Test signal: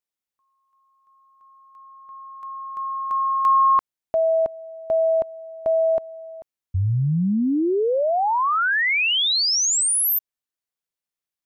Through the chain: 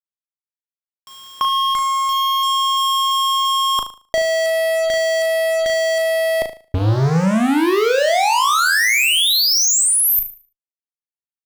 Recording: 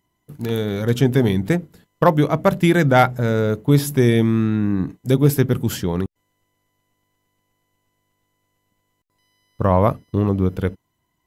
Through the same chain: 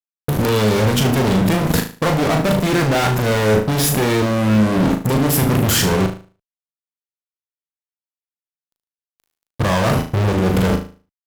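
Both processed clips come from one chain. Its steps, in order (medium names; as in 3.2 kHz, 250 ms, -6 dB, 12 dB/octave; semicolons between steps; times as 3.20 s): companding laws mixed up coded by mu; reverse; compression 12:1, threshold -26 dBFS; reverse; fuzz box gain 45 dB, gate -48 dBFS; level held to a coarse grid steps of 12 dB; flutter echo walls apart 6.4 m, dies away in 0.37 s; trim +7.5 dB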